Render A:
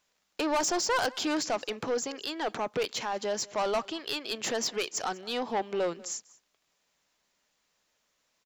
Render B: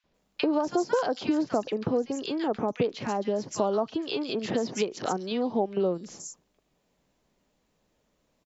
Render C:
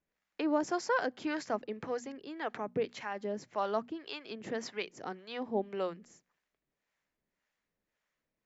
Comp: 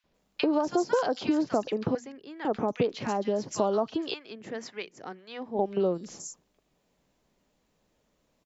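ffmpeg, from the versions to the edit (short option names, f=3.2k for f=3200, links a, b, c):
-filter_complex "[2:a]asplit=2[a][b];[1:a]asplit=3[c][d][e];[c]atrim=end=1.952[f];[a]atrim=start=1.948:end=2.452[g];[d]atrim=start=2.448:end=4.142[h];[b]atrim=start=4.138:end=5.592[i];[e]atrim=start=5.588[j];[f][g]acrossfade=d=0.004:c1=hsin:c2=hsin[k];[k][h]acrossfade=d=0.004:c1=hsin:c2=hsin[l];[l][i]acrossfade=d=0.004:c1=hsin:c2=hsin[m];[m][j]acrossfade=d=0.004:c1=hsin:c2=hsin"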